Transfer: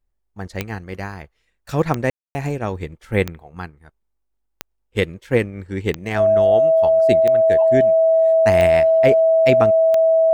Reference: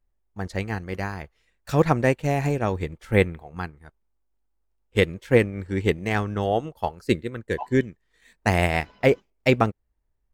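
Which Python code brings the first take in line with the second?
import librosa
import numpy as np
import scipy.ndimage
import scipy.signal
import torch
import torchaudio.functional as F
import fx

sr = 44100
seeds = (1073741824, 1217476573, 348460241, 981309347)

y = fx.fix_declick_ar(x, sr, threshold=10.0)
y = fx.notch(y, sr, hz=650.0, q=30.0)
y = fx.fix_ambience(y, sr, seeds[0], print_start_s=4.08, print_end_s=4.58, start_s=2.1, end_s=2.35)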